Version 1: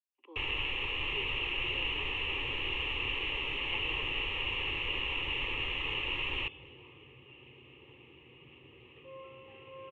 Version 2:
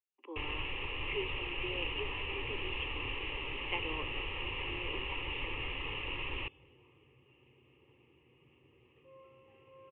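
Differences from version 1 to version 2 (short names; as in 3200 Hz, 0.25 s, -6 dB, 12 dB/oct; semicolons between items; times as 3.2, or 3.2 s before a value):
speech +8.0 dB; second sound -7.5 dB; master: add air absorption 380 m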